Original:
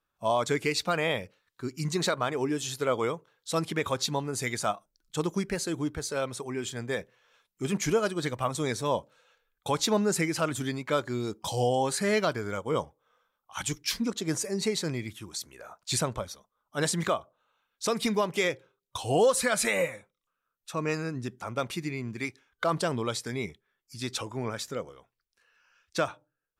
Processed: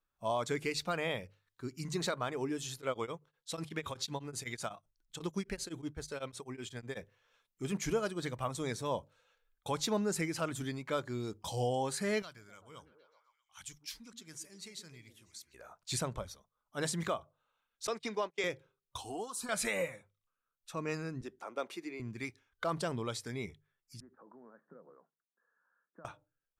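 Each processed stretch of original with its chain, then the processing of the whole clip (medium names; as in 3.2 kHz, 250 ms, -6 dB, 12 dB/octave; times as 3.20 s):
2.76–6.97 s: dynamic bell 3.1 kHz, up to +4 dB, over -46 dBFS, Q 0.95 + tremolo of two beating tones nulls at 8 Hz
12.22–15.54 s: amplifier tone stack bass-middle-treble 5-5-5 + repeats whose band climbs or falls 127 ms, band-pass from 280 Hz, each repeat 0.7 oct, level -6.5 dB
17.87–18.44 s: gate -32 dBFS, range -30 dB + three-band isolator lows -21 dB, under 260 Hz, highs -21 dB, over 7.7 kHz
19.01–19.49 s: high-pass 94 Hz + compression 2:1, threshold -29 dBFS + static phaser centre 540 Hz, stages 6
21.21–22.00 s: high-pass 310 Hz 24 dB/octave + tilt EQ -1.5 dB/octave
24.00–26.05 s: compression 12:1, threshold -42 dBFS + Chebyshev band-pass 160–1700 Hz, order 5 + distance through air 260 m
whole clip: bass shelf 60 Hz +12 dB; hum notches 50/100/150 Hz; trim -7.5 dB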